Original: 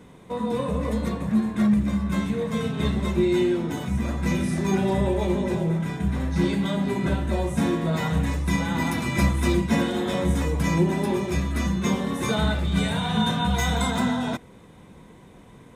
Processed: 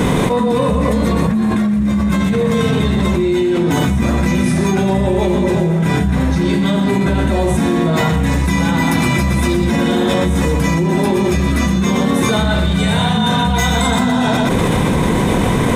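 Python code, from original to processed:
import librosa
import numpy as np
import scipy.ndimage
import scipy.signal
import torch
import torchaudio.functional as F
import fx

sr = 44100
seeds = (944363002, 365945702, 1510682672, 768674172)

p1 = x + fx.echo_single(x, sr, ms=120, db=-8.5, dry=0)
p2 = fx.env_flatten(p1, sr, amount_pct=100)
y = p2 * 10.0 ** (2.0 / 20.0)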